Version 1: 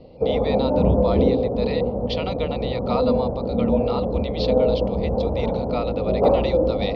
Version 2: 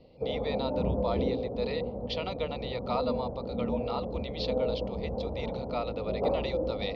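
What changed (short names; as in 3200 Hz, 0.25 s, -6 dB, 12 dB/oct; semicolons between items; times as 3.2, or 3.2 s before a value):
speech -5.5 dB; background -11.5 dB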